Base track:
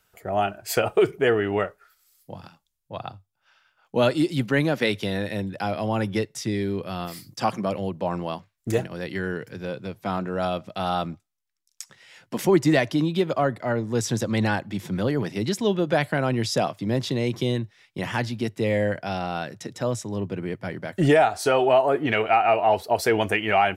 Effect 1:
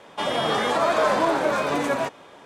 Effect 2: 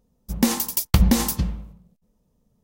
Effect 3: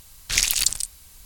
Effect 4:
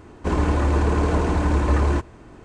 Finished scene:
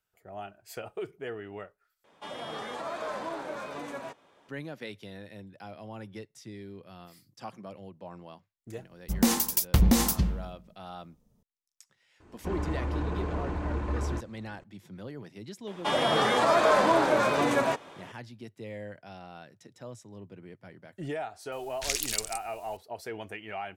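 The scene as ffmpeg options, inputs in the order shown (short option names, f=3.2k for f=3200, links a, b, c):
-filter_complex "[1:a]asplit=2[a][b];[0:a]volume=-17.5dB[c];[2:a]asoftclip=type=tanh:threshold=-11.5dB[d];[4:a]acrossover=split=4300[e][f];[f]acompressor=threshold=-58dB:ratio=4:attack=1:release=60[g];[e][g]amix=inputs=2:normalize=0[h];[c]asplit=2[i][j];[i]atrim=end=2.044[k];[a]atrim=end=2.45,asetpts=PTS-STARTPTS,volume=-15dB[l];[j]atrim=start=4.486[m];[d]atrim=end=2.63,asetpts=PTS-STARTPTS,volume=-1.5dB,afade=t=in:d=0.004:c=hsin,afade=t=out:st=2.626:d=0.004:c=hsin,adelay=8800[n];[h]atrim=end=2.44,asetpts=PTS-STARTPTS,volume=-12dB,afade=t=in:d=0.004:c=hsin,afade=t=out:st=2.436:d=0.004:c=hsin,adelay=538020S[o];[b]atrim=end=2.45,asetpts=PTS-STARTPTS,volume=-1.5dB,afade=t=in:d=0.004:c=hsin,afade=t=out:st=2.446:d=0.004:c=hsin,adelay=15670[p];[3:a]atrim=end=1.25,asetpts=PTS-STARTPTS,volume=-10.5dB,afade=t=in:d=0.004:c=hsin,afade=t=out:st=1.246:d=0.004:c=hsin,adelay=21520[q];[k][l]acrossfade=d=0.004:c1=hsin:c2=hsin[r];[r][m]acrossfade=d=0.004:c1=hsin:c2=hsin[s];[s][n][o][p][q]amix=inputs=5:normalize=0"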